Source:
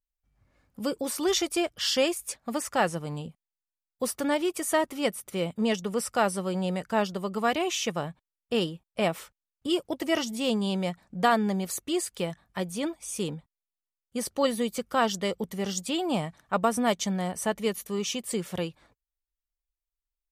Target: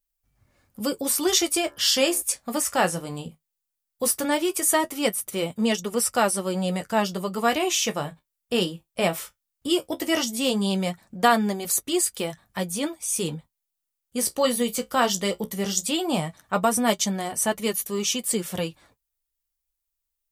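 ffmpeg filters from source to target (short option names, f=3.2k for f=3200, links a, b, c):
-filter_complex "[0:a]flanger=delay=7.9:depth=8.5:regen=-42:speed=0.17:shape=sinusoidal,crystalizer=i=1.5:c=0,asplit=3[a][b][c];[a]afade=t=out:st=1.6:d=0.02[d];[b]bandreject=f=72.49:t=h:w=4,bandreject=f=144.98:t=h:w=4,bandreject=f=217.47:t=h:w=4,bandreject=f=289.96:t=h:w=4,bandreject=f=362.45:t=h:w=4,bandreject=f=434.94:t=h:w=4,bandreject=f=507.43:t=h:w=4,bandreject=f=579.92:t=h:w=4,bandreject=f=652.41:t=h:w=4,bandreject=f=724.9:t=h:w=4,bandreject=f=797.39:t=h:w=4,bandreject=f=869.88:t=h:w=4,bandreject=f=942.37:t=h:w=4,bandreject=f=1.01486k:t=h:w=4,bandreject=f=1.08735k:t=h:w=4,bandreject=f=1.15984k:t=h:w=4,bandreject=f=1.23233k:t=h:w=4,bandreject=f=1.30482k:t=h:w=4,bandreject=f=1.37731k:t=h:w=4,bandreject=f=1.4498k:t=h:w=4,bandreject=f=1.52229k:t=h:w=4,bandreject=f=1.59478k:t=h:w=4,bandreject=f=1.66727k:t=h:w=4,bandreject=f=1.73976k:t=h:w=4,bandreject=f=1.81225k:t=h:w=4,afade=t=in:st=1.6:d=0.02,afade=t=out:st=2.21:d=0.02[e];[c]afade=t=in:st=2.21:d=0.02[f];[d][e][f]amix=inputs=3:normalize=0,volume=6.5dB"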